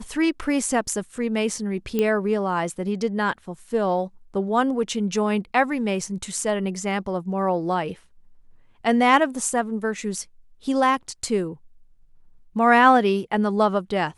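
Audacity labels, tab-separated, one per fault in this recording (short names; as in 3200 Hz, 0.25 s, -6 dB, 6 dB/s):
1.990000	1.990000	pop -11 dBFS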